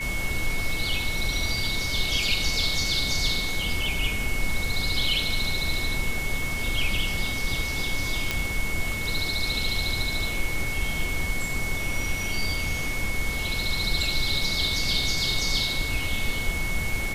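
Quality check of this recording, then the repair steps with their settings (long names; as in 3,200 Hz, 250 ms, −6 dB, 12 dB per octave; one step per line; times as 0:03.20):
whistle 2,200 Hz −30 dBFS
0:08.31: click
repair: click removal
notch filter 2,200 Hz, Q 30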